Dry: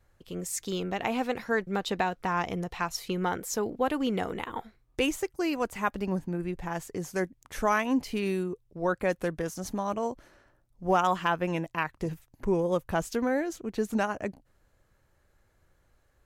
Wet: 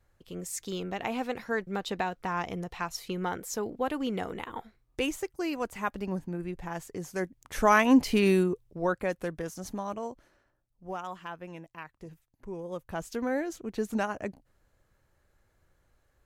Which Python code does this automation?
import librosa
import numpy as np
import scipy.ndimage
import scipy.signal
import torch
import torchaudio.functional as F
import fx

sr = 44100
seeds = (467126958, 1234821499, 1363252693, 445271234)

y = fx.gain(x, sr, db=fx.line((7.16, -3.0), (7.89, 6.5), (8.39, 6.5), (9.11, -3.5), (9.77, -3.5), (11.01, -13.5), (12.48, -13.5), (13.34, -2.0)))